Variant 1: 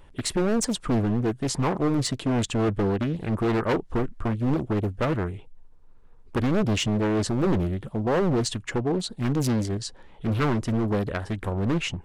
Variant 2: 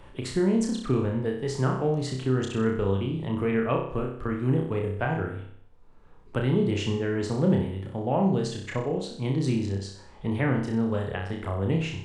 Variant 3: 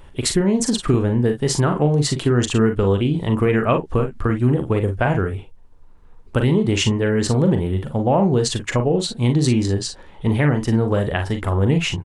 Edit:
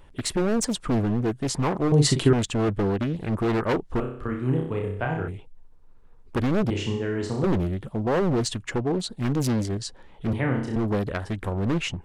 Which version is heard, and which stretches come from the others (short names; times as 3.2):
1
1.92–2.33 from 3
4–5.28 from 2
6.7–7.44 from 2
10.33–10.76 from 2